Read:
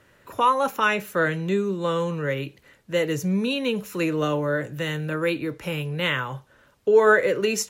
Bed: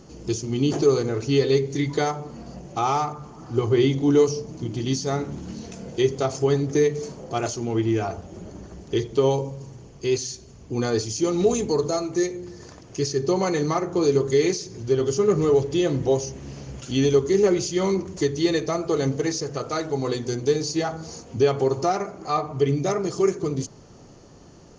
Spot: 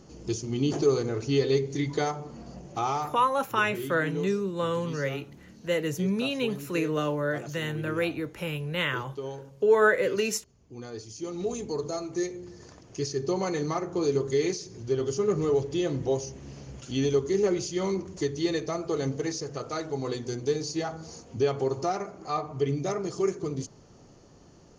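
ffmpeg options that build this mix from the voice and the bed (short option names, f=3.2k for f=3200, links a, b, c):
-filter_complex "[0:a]adelay=2750,volume=-4dB[a];[1:a]volume=6dB,afade=t=out:st=2.74:d=0.8:silence=0.251189,afade=t=in:st=10.93:d=1.42:silence=0.298538[b];[a][b]amix=inputs=2:normalize=0"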